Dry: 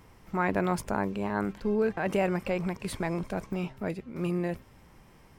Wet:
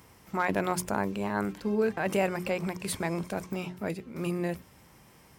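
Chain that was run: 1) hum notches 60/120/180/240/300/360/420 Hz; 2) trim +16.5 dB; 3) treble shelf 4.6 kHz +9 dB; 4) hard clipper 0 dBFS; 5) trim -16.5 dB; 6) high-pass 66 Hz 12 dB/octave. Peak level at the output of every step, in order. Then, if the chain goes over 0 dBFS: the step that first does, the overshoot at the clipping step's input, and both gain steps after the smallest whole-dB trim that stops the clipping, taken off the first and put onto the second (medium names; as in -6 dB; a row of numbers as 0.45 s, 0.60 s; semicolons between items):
-13.5 dBFS, +3.0 dBFS, +3.0 dBFS, 0.0 dBFS, -16.5 dBFS, -15.0 dBFS; step 2, 3.0 dB; step 2 +13.5 dB, step 5 -13.5 dB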